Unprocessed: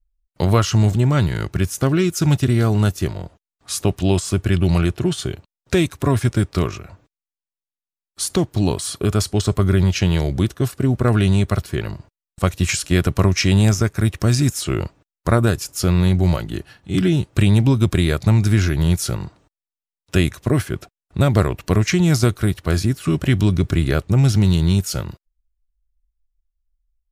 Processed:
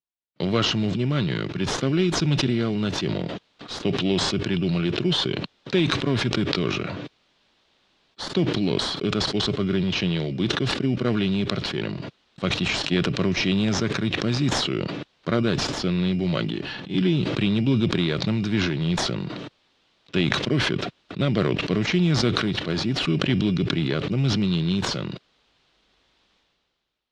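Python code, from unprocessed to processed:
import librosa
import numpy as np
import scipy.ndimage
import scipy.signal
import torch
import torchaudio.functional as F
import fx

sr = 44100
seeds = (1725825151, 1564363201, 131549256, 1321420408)

p1 = scipy.signal.sosfilt(scipy.signal.butter(4, 150.0, 'highpass', fs=sr, output='sos'), x)
p2 = fx.peak_eq(p1, sr, hz=860.0, db=-8.5, octaves=0.85)
p3 = fx.sample_hold(p2, sr, seeds[0], rate_hz=2600.0, jitter_pct=0)
p4 = p2 + F.gain(torch.from_numpy(p3), -8.0).numpy()
p5 = fx.ladder_lowpass(p4, sr, hz=4500.0, resonance_pct=40)
p6 = fx.sustainer(p5, sr, db_per_s=27.0)
y = F.gain(torch.from_numpy(p6), 2.0).numpy()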